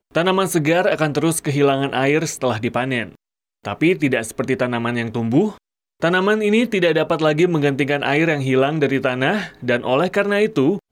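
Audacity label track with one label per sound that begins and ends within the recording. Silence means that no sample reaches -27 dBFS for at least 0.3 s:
3.650000	5.510000	sound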